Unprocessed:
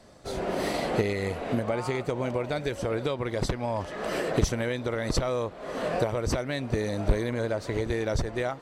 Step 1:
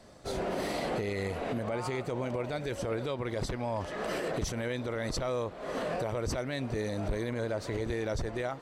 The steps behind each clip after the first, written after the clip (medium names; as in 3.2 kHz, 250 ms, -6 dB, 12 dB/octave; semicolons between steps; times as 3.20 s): peak limiter -23.5 dBFS, peak gain reduction 10 dB; trim -1 dB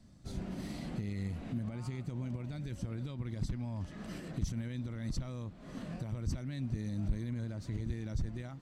FFT filter 200 Hz 0 dB, 310 Hz -8 dB, 440 Hz -21 dB, 6.5 kHz -10 dB, 10 kHz -12 dB; trim +1 dB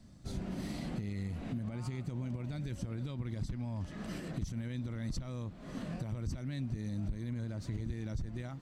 compression 4:1, threshold -36 dBFS, peak gain reduction 8.5 dB; trim +2.5 dB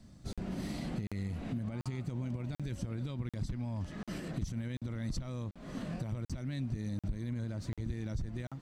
crackling interface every 0.74 s, samples 2048, zero, from 0.33 s; trim +1 dB